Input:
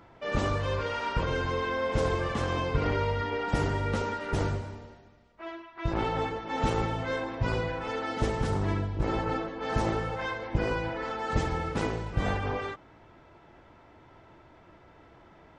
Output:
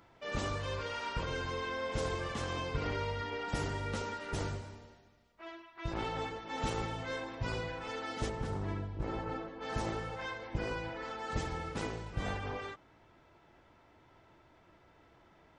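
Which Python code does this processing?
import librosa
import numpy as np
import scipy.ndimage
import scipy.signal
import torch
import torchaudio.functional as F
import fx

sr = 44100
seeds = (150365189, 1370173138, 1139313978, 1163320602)

y = fx.high_shelf(x, sr, hz=2800.0, db=fx.steps((0.0, 9.0), (8.28, -2.5), (9.6, 6.5)))
y = F.gain(torch.from_numpy(y), -8.5).numpy()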